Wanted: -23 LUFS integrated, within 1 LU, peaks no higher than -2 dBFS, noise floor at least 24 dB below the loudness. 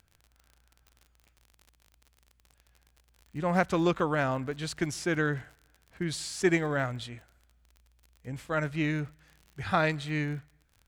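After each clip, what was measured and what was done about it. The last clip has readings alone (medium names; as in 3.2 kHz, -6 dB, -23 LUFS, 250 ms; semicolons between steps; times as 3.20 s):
tick rate 42 per s; loudness -30.5 LUFS; peak level -11.5 dBFS; loudness target -23.0 LUFS
-> de-click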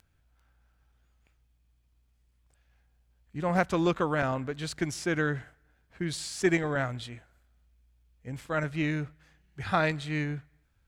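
tick rate 0.18 per s; loudness -30.5 LUFS; peak level -11.5 dBFS; loudness target -23.0 LUFS
-> trim +7.5 dB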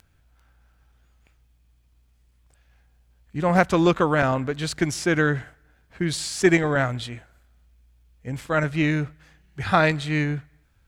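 loudness -23.0 LUFS; peak level -4.0 dBFS; noise floor -62 dBFS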